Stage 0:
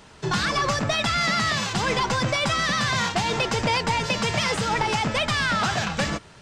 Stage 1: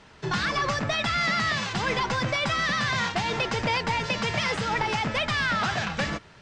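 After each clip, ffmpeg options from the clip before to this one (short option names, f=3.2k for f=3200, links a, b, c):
-af "lowpass=5.9k,equalizer=f=1.9k:w=1.7:g=3,volume=-3.5dB"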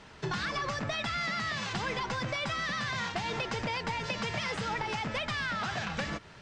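-af "acompressor=threshold=-31dB:ratio=5"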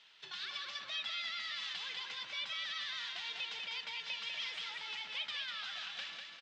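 -filter_complex "[0:a]bandpass=f=3.4k:t=q:w=2.8:csg=0,asplit=2[a][b];[b]aecho=0:1:197|394|591|788|985:0.631|0.227|0.0818|0.0294|0.0106[c];[a][c]amix=inputs=2:normalize=0"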